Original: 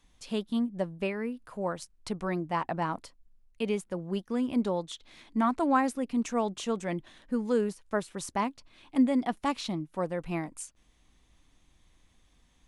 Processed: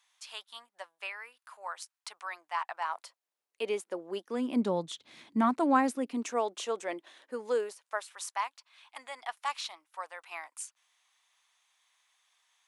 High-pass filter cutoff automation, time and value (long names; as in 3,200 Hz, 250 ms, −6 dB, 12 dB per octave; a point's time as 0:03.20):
high-pass filter 24 dB per octave
0:02.75 900 Hz
0:03.72 330 Hz
0:04.26 330 Hz
0:04.88 120 Hz
0:05.41 120 Hz
0:06.51 380 Hz
0:07.51 380 Hz
0:08.12 870 Hz